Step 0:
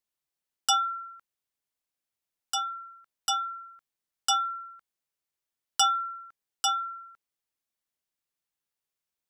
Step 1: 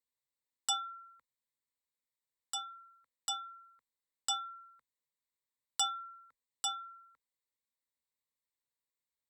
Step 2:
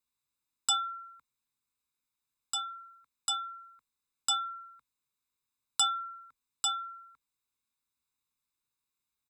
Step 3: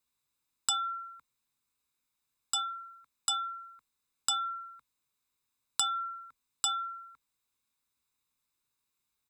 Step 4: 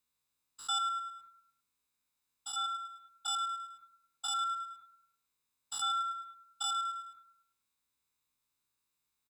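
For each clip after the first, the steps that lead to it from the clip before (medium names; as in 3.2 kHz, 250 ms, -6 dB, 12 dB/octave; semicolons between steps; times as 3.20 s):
rippled EQ curve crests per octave 1, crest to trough 12 dB; trim -8 dB
comb 0.8 ms, depth 75%; trim +2.5 dB
compression 6:1, threshold -30 dBFS, peak gain reduction 8 dB; trim +4 dB
spectrogram pixelated in time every 100 ms; on a send: feedback delay 106 ms, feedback 44%, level -12 dB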